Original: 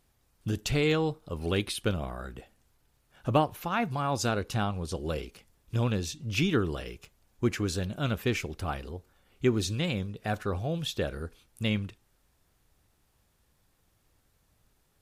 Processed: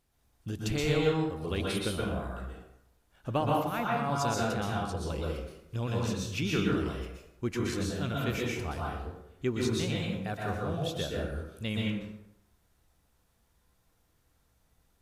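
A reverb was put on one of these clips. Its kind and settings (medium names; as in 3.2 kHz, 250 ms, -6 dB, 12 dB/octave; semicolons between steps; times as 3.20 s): plate-style reverb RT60 0.82 s, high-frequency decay 0.6×, pre-delay 110 ms, DRR -3.5 dB; trim -6 dB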